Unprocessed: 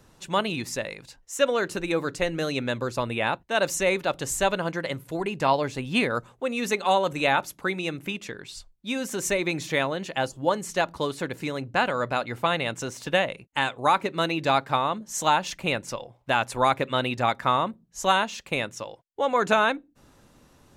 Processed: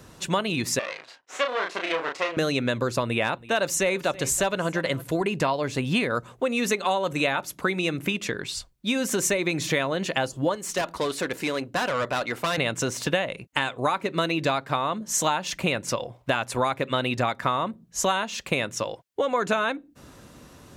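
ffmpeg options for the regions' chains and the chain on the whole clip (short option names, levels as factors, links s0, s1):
-filter_complex "[0:a]asettb=1/sr,asplit=3[s0][s1][s2];[s0]atrim=end=0.794[s3];[s1]atrim=start=0.79:end=2.37,asetpts=PTS-STARTPTS,afade=t=in:d=0.004:c=qsin,afade=t=out:st=1.576:d=0.004:c=qsin,aeval=exprs='max(val(0),0)':c=same,highpass=540,lowpass=3900,asplit=2[s4][s5];[s5]adelay=32,volume=0.631[s6];[s4][s6]amix=inputs=2:normalize=0,atrim=end_sample=69678[s7];[s2]atrim=start=2.366[s8];[s3][s7]acrossfade=d=0.004:c1=hsin:c2=qsin[s9];[s9][s8]acrossfade=d=0.004:c1=qsin:c2=hsin,asettb=1/sr,asplit=3[s10][s11][s12];[s10]atrim=end=3.044[s13];[s11]atrim=start=3.04:end=5.02,asetpts=PTS-STARTPTS,afade=t=in:d=0.004:c=qsin,afade=t=out:st=1.976:d=0.004:c=qsin,asoftclip=type=hard:threshold=0.237,aecho=1:1:327:0.0841,atrim=end_sample=87318[s14];[s12]atrim=start=5.016[s15];[s13][s14]acrossfade=d=0.004:c1=hsin:c2=qsin[s16];[s16][s15]acrossfade=d=0.004:c1=qsin:c2=hsin,asettb=1/sr,asplit=3[s17][s18][s19];[s17]atrim=end=10.554[s20];[s18]atrim=start=10.55:end=12.58,asetpts=PTS-STARTPTS,afade=t=in:d=0.004:c=qsin,afade=t=out:st=2.026:d=0.004:c=qsin,equalizer=f=110:w=0.75:g=-13.5,aeval=exprs='(tanh(22.4*val(0)+0.3)-tanh(0.3))/22.4':c=same[s21];[s19]atrim=start=12.576[s22];[s20][s21]acrossfade=d=0.004:c1=hsin:c2=qsin[s23];[s23][s22]acrossfade=d=0.004:c1=qsin:c2=hsin,acompressor=threshold=0.0316:ratio=5,highpass=45,bandreject=f=840:w=12,volume=2.66"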